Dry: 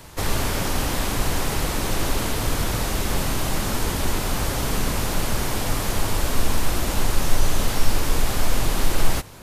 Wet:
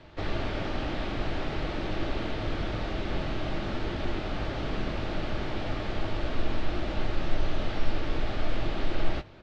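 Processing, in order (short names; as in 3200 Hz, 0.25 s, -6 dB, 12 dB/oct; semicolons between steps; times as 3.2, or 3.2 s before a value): LPF 3900 Hz 24 dB/oct; notch 1000 Hz, Q 8.7; doubler 20 ms -13 dB; small resonant body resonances 330/620 Hz, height 7 dB; gain -8 dB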